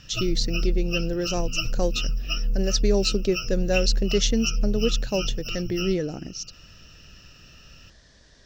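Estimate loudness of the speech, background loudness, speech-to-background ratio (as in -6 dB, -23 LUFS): -26.5 LUFS, -29.5 LUFS, 3.0 dB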